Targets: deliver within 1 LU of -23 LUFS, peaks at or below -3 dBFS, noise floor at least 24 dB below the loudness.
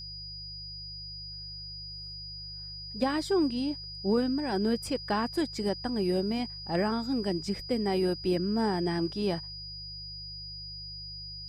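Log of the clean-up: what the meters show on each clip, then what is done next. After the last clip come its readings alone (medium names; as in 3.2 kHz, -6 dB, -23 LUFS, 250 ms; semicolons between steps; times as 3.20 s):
hum 50 Hz; highest harmonic 150 Hz; hum level -46 dBFS; steady tone 4.9 kHz; tone level -40 dBFS; loudness -31.5 LUFS; peak level -14.0 dBFS; loudness target -23.0 LUFS
-> de-hum 50 Hz, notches 3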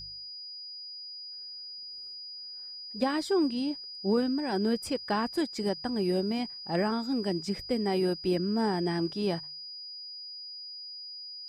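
hum not found; steady tone 4.9 kHz; tone level -40 dBFS
-> band-stop 4.9 kHz, Q 30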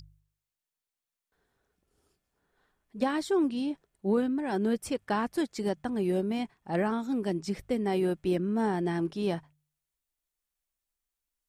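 steady tone not found; loudness -30.5 LUFS; peak level -14.5 dBFS; loudness target -23.0 LUFS
-> trim +7.5 dB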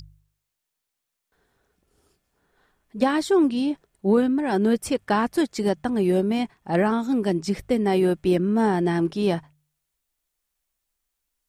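loudness -23.0 LUFS; peak level -7.0 dBFS; noise floor -82 dBFS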